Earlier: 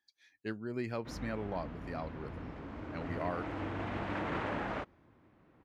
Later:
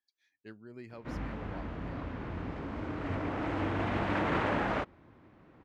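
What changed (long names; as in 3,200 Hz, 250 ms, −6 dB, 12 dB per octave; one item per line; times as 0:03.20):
speech −10.0 dB
background +6.0 dB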